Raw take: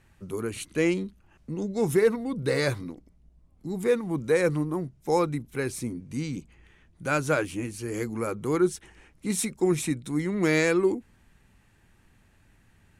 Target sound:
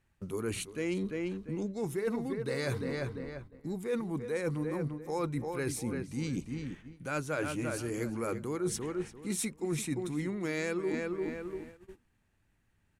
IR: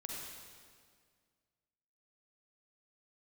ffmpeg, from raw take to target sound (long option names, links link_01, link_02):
-filter_complex "[0:a]asplit=2[link_01][link_02];[link_02]adelay=346,lowpass=frequency=3000:poles=1,volume=-10.5dB,asplit=2[link_03][link_04];[link_04]adelay=346,lowpass=frequency=3000:poles=1,volume=0.31,asplit=2[link_05][link_06];[link_06]adelay=346,lowpass=frequency=3000:poles=1,volume=0.31[link_07];[link_01][link_03][link_05][link_07]amix=inputs=4:normalize=0,agate=range=-17dB:threshold=-51dB:ratio=16:detection=peak,areverse,acompressor=threshold=-35dB:ratio=6,areverse,volume=3.5dB"